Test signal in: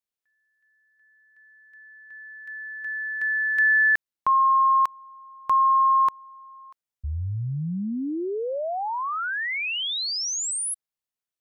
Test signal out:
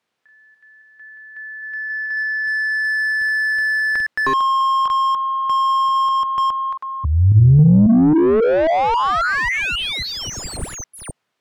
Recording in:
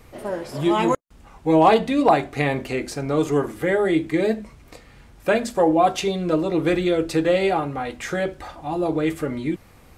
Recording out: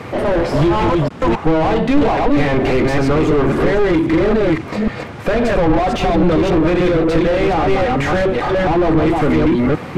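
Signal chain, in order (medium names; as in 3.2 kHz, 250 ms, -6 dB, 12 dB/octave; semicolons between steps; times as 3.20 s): chunks repeated in reverse 271 ms, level -4 dB; high-pass 99 Hz 24 dB/octave; compression 6:1, threshold -22 dBFS; overdrive pedal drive 31 dB, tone 4.6 kHz, clips at -11 dBFS; RIAA curve playback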